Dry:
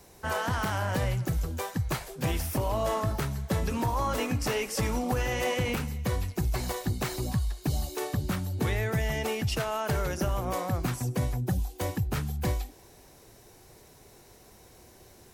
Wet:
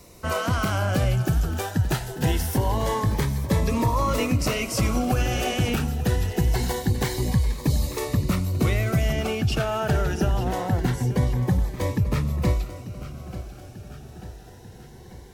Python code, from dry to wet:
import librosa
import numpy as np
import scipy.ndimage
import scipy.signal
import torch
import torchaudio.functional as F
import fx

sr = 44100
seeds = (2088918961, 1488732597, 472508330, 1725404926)

y = fx.high_shelf(x, sr, hz=5700.0, db=fx.steps((0.0, -3.5), (9.11, -11.5)))
y = fx.echo_feedback(y, sr, ms=891, feedback_pct=56, wet_db=-14)
y = fx.notch_cascade(y, sr, direction='rising', hz=0.24)
y = F.gain(torch.from_numpy(y), 7.0).numpy()